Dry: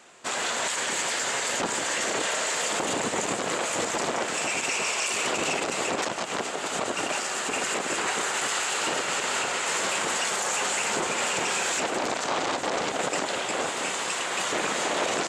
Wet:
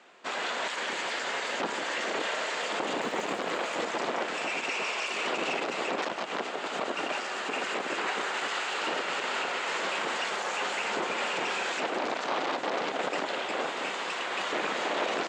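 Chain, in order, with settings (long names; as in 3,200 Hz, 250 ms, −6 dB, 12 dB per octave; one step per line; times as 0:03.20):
three-way crossover with the lows and the highs turned down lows −20 dB, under 170 Hz, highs −22 dB, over 4,900 Hz
0:03.01–0:03.81: surface crackle 200 per second → 44 per second −40 dBFS
level −2.5 dB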